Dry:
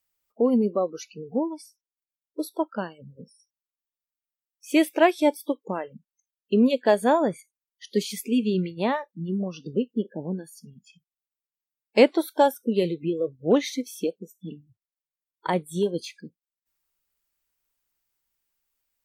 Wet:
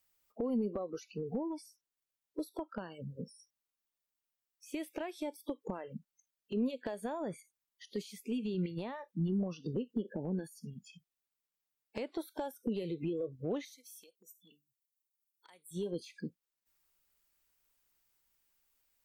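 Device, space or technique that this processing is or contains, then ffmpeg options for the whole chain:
de-esser from a sidechain: -filter_complex "[0:a]asplit=2[link_01][link_02];[link_02]highpass=frequency=4600:poles=1,apad=whole_len=839866[link_03];[link_01][link_03]sidechaincompress=threshold=-57dB:ratio=4:attack=2:release=76,asettb=1/sr,asplit=3[link_04][link_05][link_06];[link_04]atrim=end=13.654[link_07];[link_05]atrim=start=13.65:end=15.71,asetpts=PTS-STARTPTS,afade=type=in:duration=0.004:curve=qsin,afade=type=out:start_time=2.056:duration=0.004:curve=qsin,aderivative[link_08];[link_06]atrim=start=15.706[link_09];[link_07][link_08]acrossfade=duration=0.004:curve1=hsin:curve2=qsin[link_10];[link_10][link_09]acrossfade=duration=0.004:curve1=qsin:curve2=hsin,volume=2dB"

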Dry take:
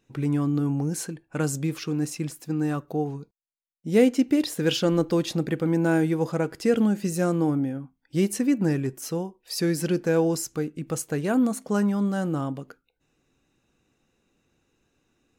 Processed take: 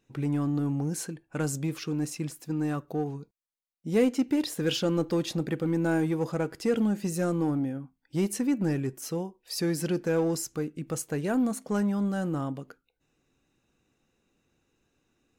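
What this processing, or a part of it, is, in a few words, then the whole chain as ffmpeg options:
parallel distortion: -filter_complex "[0:a]asplit=2[link_01][link_02];[link_02]asoftclip=type=hard:threshold=-23dB,volume=-5.5dB[link_03];[link_01][link_03]amix=inputs=2:normalize=0,volume=-6.5dB"

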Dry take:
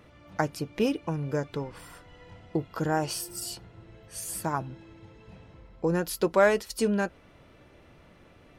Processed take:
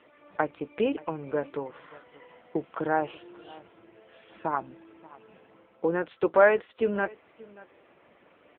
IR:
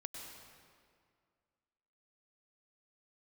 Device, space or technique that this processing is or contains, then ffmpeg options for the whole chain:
satellite phone: -af "highpass=330,lowpass=3200,aecho=1:1:580:0.0841,volume=3dB" -ar 8000 -c:a libopencore_amrnb -b:a 6700

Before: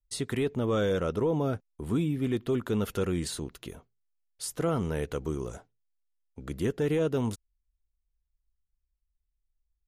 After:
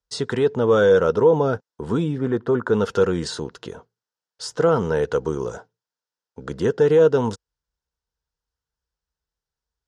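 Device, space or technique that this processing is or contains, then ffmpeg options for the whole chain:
car door speaker: -filter_complex "[0:a]highpass=100,equalizer=frequency=290:width_type=q:width=4:gain=-3,equalizer=frequency=470:width_type=q:width=4:gain=9,equalizer=frequency=920:width_type=q:width=4:gain=8,equalizer=frequency=1500:width_type=q:width=4:gain=8,equalizer=frequency=2300:width_type=q:width=4:gain=-8,equalizer=frequency=5200:width_type=q:width=4:gain=5,lowpass=frequency=7200:width=0.5412,lowpass=frequency=7200:width=1.3066,asplit=3[link_01][link_02][link_03];[link_01]afade=type=out:start_time=2.17:duration=0.02[link_04];[link_02]highshelf=frequency=2100:width_type=q:width=1.5:gain=-8,afade=type=in:start_time=2.17:duration=0.02,afade=type=out:start_time=2.72:duration=0.02[link_05];[link_03]afade=type=in:start_time=2.72:duration=0.02[link_06];[link_04][link_05][link_06]amix=inputs=3:normalize=0,volume=6dB"

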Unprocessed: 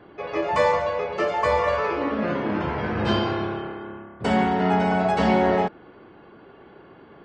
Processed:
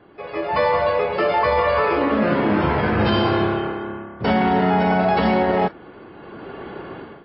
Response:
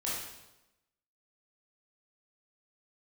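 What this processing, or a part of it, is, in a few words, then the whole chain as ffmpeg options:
low-bitrate web radio: -af "dynaudnorm=framelen=410:gausssize=3:maxgain=16.5dB,alimiter=limit=-8dB:level=0:latency=1:release=27,volume=-1.5dB" -ar 12000 -c:a libmp3lame -b:a 24k

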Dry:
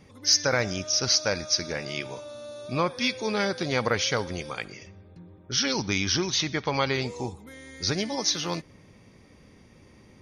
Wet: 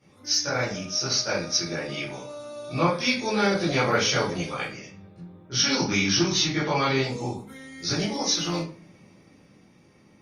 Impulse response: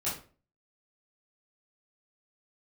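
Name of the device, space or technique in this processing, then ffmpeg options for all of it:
far-field microphone of a smart speaker: -filter_complex "[1:a]atrim=start_sample=2205[link_01];[0:a][link_01]afir=irnorm=-1:irlink=0,highpass=140,dynaudnorm=framelen=100:gausssize=21:maxgain=7dB,volume=-7dB" -ar 48000 -c:a libopus -b:a 48k

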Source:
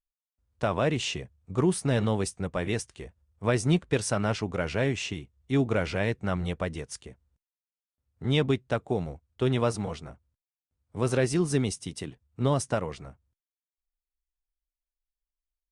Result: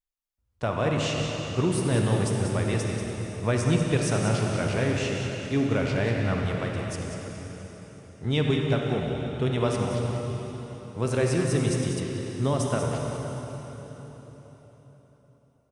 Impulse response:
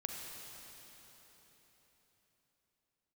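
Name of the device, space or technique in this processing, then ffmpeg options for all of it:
cave: -filter_complex "[0:a]aecho=1:1:190:0.355[link_01];[1:a]atrim=start_sample=2205[link_02];[link_01][link_02]afir=irnorm=-1:irlink=0,asettb=1/sr,asplit=3[link_03][link_04][link_05];[link_03]atrim=end=12.004[link_06];[link_04]atrim=start=12:end=12.44,asetpts=PTS-STARTPTS,afade=type=in:duration=0.004:curve=qsin,afade=type=out:start_time=0.436:duration=0.004:curve=qsin,acrossover=split=5800[link_07][link_08];[link_08]acompressor=threshold=-52dB:ratio=4:attack=1:release=60[link_09];[link_07][link_09]amix=inputs=2:normalize=0[link_10];[link_05]atrim=start=12.436[link_11];[link_06][link_10]acrossfade=duration=0.004:curve1=hsin:curve2=qsin[link_12];[link_12][link_11]acrossfade=duration=0.004:curve1=qsin:curve2=hsin,equalizer=frequency=110:width_type=o:width=0.28:gain=4.5,volume=1dB"

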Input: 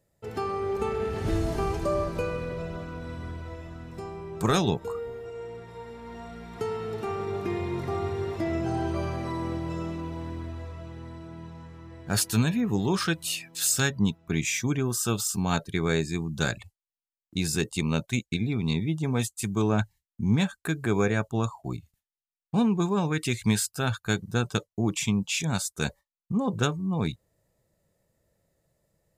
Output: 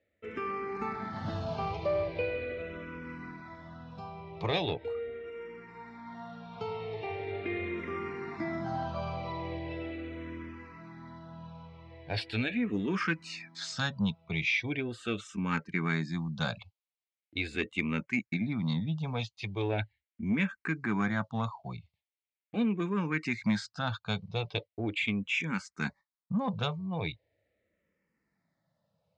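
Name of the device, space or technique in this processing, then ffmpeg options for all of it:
barber-pole phaser into a guitar amplifier: -filter_complex "[0:a]asplit=2[link_01][link_02];[link_02]afreqshift=-0.4[link_03];[link_01][link_03]amix=inputs=2:normalize=1,asoftclip=type=tanh:threshold=-18.5dB,highpass=100,equalizer=frequency=130:width_type=q:width=4:gain=-6,equalizer=frequency=380:width_type=q:width=4:gain=-6,equalizer=frequency=2200:width_type=q:width=4:gain=8,lowpass=frequency=4400:width=0.5412,lowpass=frequency=4400:width=1.3066"

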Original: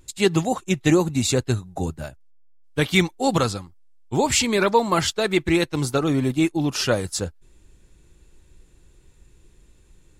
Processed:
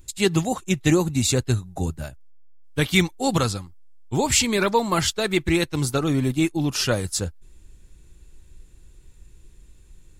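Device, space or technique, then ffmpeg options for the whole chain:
smiley-face EQ: -af "lowshelf=frequency=80:gain=6.5,equalizer=frequency=600:width_type=o:width=2.4:gain=-3,highshelf=frequency=9900:gain=6"

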